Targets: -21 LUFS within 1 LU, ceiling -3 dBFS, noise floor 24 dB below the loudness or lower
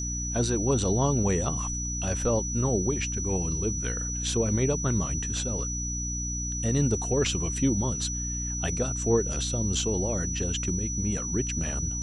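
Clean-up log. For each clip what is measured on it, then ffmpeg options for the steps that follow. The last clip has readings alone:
hum 60 Hz; harmonics up to 300 Hz; hum level -31 dBFS; steady tone 5900 Hz; tone level -32 dBFS; loudness -27.0 LUFS; peak -12.0 dBFS; loudness target -21.0 LUFS
-> -af "bandreject=f=60:t=h:w=4,bandreject=f=120:t=h:w=4,bandreject=f=180:t=h:w=4,bandreject=f=240:t=h:w=4,bandreject=f=300:t=h:w=4"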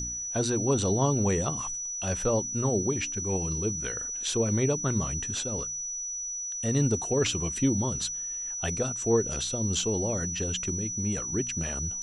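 hum none; steady tone 5900 Hz; tone level -32 dBFS
-> -af "bandreject=f=5.9k:w=30"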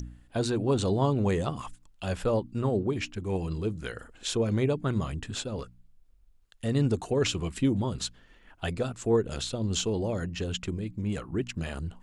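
steady tone none; loudness -30.0 LUFS; peak -13.5 dBFS; loudness target -21.0 LUFS
-> -af "volume=9dB"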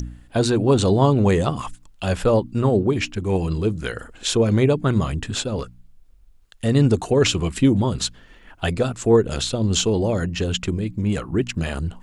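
loudness -21.0 LUFS; peak -4.5 dBFS; noise floor -50 dBFS

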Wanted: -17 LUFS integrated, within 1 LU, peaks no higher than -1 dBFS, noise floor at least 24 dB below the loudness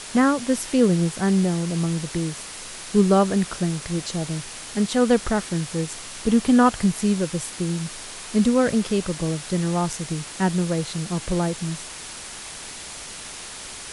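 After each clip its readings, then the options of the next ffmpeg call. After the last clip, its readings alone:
noise floor -37 dBFS; noise floor target -47 dBFS; loudness -23.0 LUFS; peak -6.0 dBFS; loudness target -17.0 LUFS
-> -af "afftdn=nr=10:nf=-37"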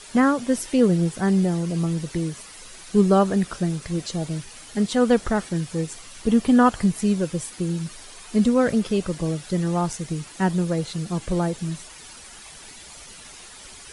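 noise floor -43 dBFS; noise floor target -47 dBFS
-> -af "afftdn=nr=6:nf=-43"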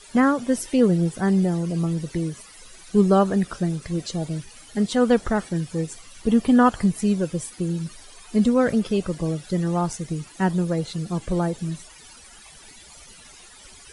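noise floor -47 dBFS; loudness -23.0 LUFS; peak -6.0 dBFS; loudness target -17.0 LUFS
-> -af "volume=6dB,alimiter=limit=-1dB:level=0:latency=1"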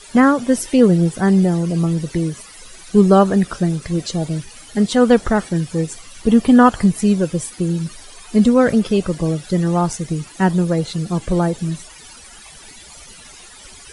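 loudness -17.0 LUFS; peak -1.0 dBFS; noise floor -41 dBFS

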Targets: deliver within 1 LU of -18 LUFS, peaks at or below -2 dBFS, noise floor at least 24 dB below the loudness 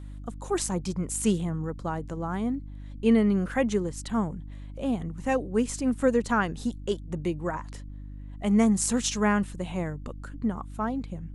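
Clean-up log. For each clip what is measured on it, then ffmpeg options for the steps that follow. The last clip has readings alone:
hum 50 Hz; harmonics up to 300 Hz; hum level -38 dBFS; loudness -28.0 LUFS; peak -10.5 dBFS; loudness target -18.0 LUFS
-> -af "bandreject=f=50:t=h:w=4,bandreject=f=100:t=h:w=4,bandreject=f=150:t=h:w=4,bandreject=f=200:t=h:w=4,bandreject=f=250:t=h:w=4,bandreject=f=300:t=h:w=4"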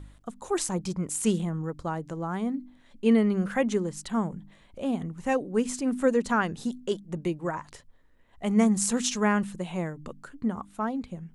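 hum none; loudness -28.5 LUFS; peak -10.0 dBFS; loudness target -18.0 LUFS
-> -af "volume=10.5dB,alimiter=limit=-2dB:level=0:latency=1"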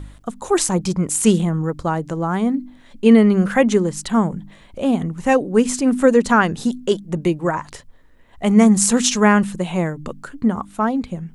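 loudness -18.0 LUFS; peak -2.0 dBFS; noise floor -47 dBFS

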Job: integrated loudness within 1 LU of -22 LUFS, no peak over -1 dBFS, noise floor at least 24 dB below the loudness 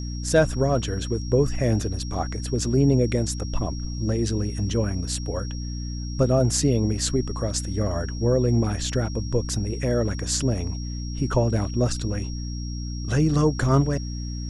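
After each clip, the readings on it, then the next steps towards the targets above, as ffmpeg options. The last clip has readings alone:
hum 60 Hz; harmonics up to 300 Hz; hum level -28 dBFS; steady tone 5600 Hz; tone level -40 dBFS; loudness -24.5 LUFS; peak -6.5 dBFS; loudness target -22.0 LUFS
-> -af "bandreject=f=60:t=h:w=4,bandreject=f=120:t=h:w=4,bandreject=f=180:t=h:w=4,bandreject=f=240:t=h:w=4,bandreject=f=300:t=h:w=4"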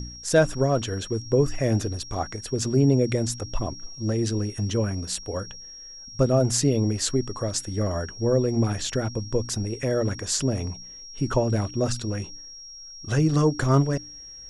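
hum none; steady tone 5600 Hz; tone level -40 dBFS
-> -af "bandreject=f=5.6k:w=30"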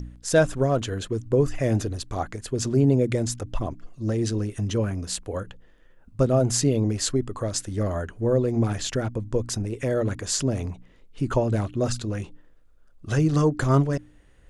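steady tone none; loudness -25.0 LUFS; peak -7.5 dBFS; loudness target -22.0 LUFS
-> -af "volume=3dB"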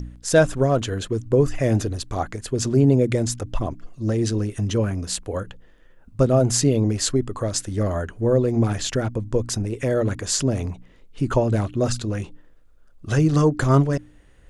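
loudness -22.0 LUFS; peak -4.5 dBFS; noise floor -51 dBFS

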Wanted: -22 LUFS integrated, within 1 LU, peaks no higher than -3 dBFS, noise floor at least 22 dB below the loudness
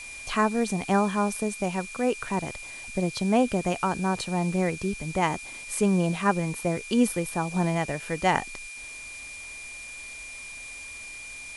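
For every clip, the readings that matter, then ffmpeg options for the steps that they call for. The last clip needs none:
steady tone 2400 Hz; tone level -39 dBFS; noise floor -41 dBFS; noise floor target -50 dBFS; loudness -28.0 LUFS; peak -6.5 dBFS; loudness target -22.0 LUFS
-> -af "bandreject=f=2.4k:w=30"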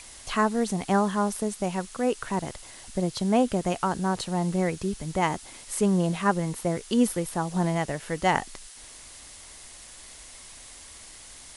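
steady tone none; noise floor -47 dBFS; noise floor target -49 dBFS
-> -af "afftdn=nr=6:nf=-47"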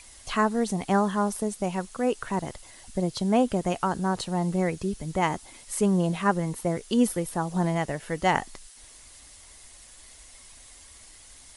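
noise floor -50 dBFS; loudness -27.0 LUFS; peak -6.5 dBFS; loudness target -22.0 LUFS
-> -af "volume=5dB,alimiter=limit=-3dB:level=0:latency=1"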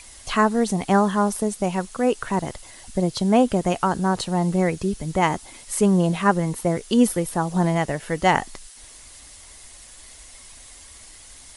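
loudness -22.0 LUFS; peak -3.0 dBFS; noise floor -45 dBFS

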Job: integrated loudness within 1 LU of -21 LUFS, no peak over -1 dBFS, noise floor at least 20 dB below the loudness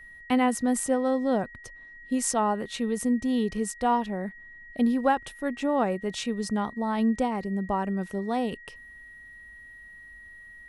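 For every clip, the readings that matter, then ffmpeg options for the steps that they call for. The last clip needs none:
steady tone 1900 Hz; tone level -45 dBFS; loudness -27.5 LUFS; peak -10.5 dBFS; loudness target -21.0 LUFS
-> -af "bandreject=f=1.9k:w=30"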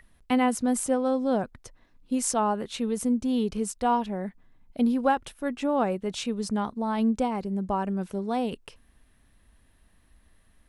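steady tone none; loudness -27.5 LUFS; peak -10.5 dBFS; loudness target -21.0 LUFS
-> -af "volume=6.5dB"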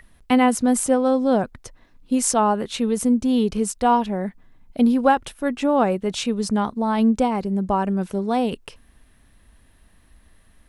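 loudness -21.0 LUFS; peak -4.0 dBFS; noise floor -56 dBFS

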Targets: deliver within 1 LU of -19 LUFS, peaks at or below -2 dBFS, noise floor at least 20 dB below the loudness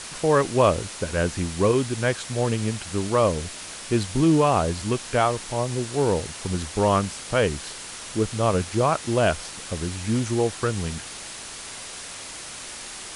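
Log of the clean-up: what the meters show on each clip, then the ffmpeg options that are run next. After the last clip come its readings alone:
noise floor -38 dBFS; noise floor target -44 dBFS; loudness -24.0 LUFS; peak -6.0 dBFS; loudness target -19.0 LUFS
-> -af "afftdn=nr=6:nf=-38"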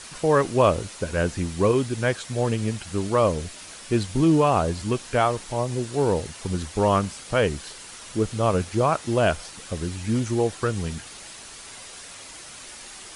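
noise floor -42 dBFS; noise floor target -44 dBFS
-> -af "afftdn=nr=6:nf=-42"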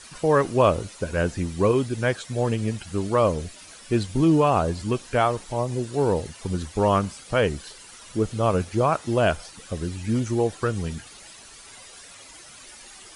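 noise floor -46 dBFS; loudness -24.0 LUFS; peak -6.0 dBFS; loudness target -19.0 LUFS
-> -af "volume=5dB,alimiter=limit=-2dB:level=0:latency=1"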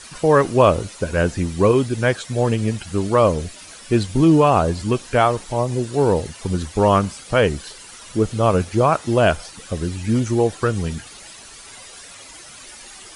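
loudness -19.0 LUFS; peak -2.0 dBFS; noise floor -41 dBFS

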